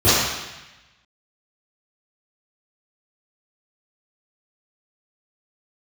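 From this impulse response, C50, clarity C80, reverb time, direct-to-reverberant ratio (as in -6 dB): -3.0 dB, 0.5 dB, 1.0 s, -16.5 dB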